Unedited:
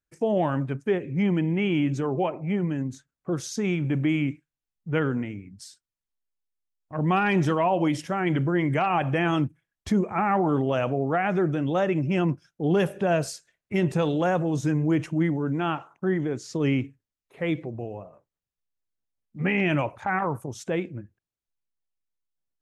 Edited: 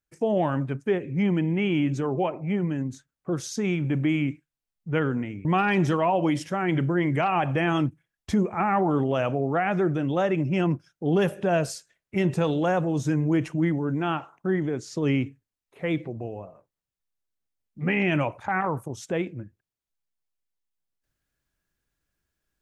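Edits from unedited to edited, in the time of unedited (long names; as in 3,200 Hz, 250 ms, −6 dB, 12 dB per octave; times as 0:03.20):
0:05.45–0:07.03: remove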